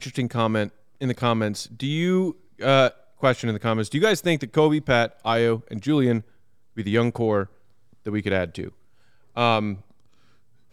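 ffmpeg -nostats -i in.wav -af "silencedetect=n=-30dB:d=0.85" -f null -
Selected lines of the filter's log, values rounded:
silence_start: 9.74
silence_end: 10.72 | silence_duration: 0.98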